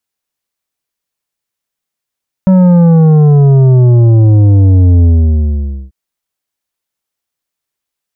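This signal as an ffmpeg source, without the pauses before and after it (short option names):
-f lavfi -i "aevalsrc='0.631*clip((3.44-t)/0.87,0,1)*tanh(2.82*sin(2*PI*190*3.44/log(65/190)*(exp(log(65/190)*t/3.44)-1)))/tanh(2.82)':d=3.44:s=44100"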